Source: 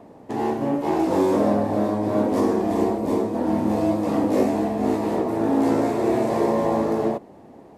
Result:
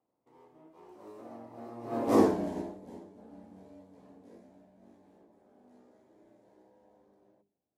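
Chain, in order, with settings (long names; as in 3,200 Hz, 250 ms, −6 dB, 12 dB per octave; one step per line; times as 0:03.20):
source passing by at 0:02.21, 37 m/s, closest 4.7 metres
mains-hum notches 50/100/150/200/250/300/350/400 Hz
expander for the loud parts 1.5 to 1, over −40 dBFS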